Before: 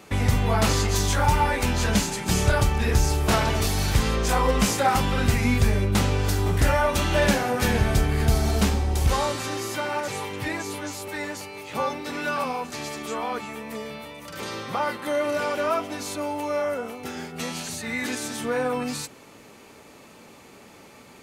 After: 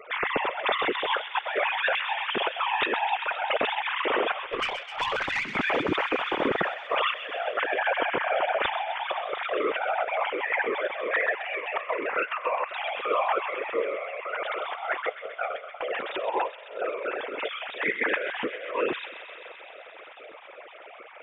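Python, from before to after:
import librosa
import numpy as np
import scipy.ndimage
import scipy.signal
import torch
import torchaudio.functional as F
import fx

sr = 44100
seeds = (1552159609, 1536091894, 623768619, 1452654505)

y = fx.sine_speech(x, sr)
y = fx.whisperise(y, sr, seeds[0])
y = fx.over_compress(y, sr, threshold_db=-28.0, ratio=-0.5)
y = fx.tube_stage(y, sr, drive_db=20.0, bias=0.3, at=(4.45, 5.55))
y = fx.echo_wet_highpass(y, sr, ms=130, feedback_pct=83, hz=2200.0, wet_db=-9)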